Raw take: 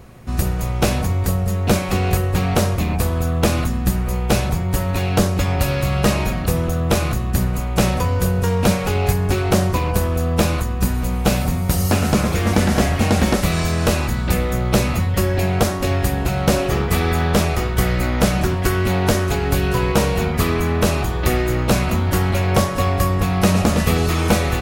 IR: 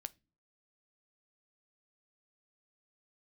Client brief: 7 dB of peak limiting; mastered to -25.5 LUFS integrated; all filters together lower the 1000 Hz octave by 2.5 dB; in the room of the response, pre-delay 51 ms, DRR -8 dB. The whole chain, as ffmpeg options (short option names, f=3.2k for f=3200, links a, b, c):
-filter_complex "[0:a]equalizer=f=1k:t=o:g=-3.5,alimiter=limit=-10.5dB:level=0:latency=1,asplit=2[a][b];[1:a]atrim=start_sample=2205,adelay=51[c];[b][c]afir=irnorm=-1:irlink=0,volume=12dB[d];[a][d]amix=inputs=2:normalize=0,volume=-13.5dB"